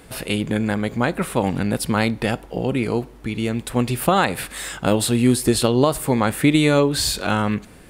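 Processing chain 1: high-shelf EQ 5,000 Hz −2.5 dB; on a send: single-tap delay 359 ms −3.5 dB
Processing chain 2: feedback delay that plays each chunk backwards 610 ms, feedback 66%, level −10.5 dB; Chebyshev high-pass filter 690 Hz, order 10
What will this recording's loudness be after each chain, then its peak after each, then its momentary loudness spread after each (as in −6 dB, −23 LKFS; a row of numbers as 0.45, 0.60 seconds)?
−19.0, −26.0 LKFS; −1.5, −7.5 dBFS; 7, 11 LU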